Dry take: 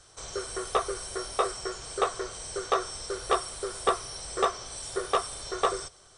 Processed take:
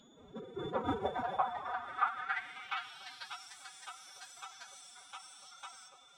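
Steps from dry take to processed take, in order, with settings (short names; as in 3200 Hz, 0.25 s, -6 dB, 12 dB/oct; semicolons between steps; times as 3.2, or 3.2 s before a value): resonant high shelf 3500 Hz -10 dB, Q 1.5; on a send at -9 dB: reverb, pre-delay 4 ms; on the sum: echoes that change speed 0.138 s, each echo +4 st, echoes 2, each echo -6 dB; analogue delay 0.29 s, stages 1024, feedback 54%, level -4.5 dB; band-pass sweep 230 Hz -> 6500 Hz, 0.39–3.54; whine 3500 Hz -59 dBFS; formant-preserving pitch shift +11.5 st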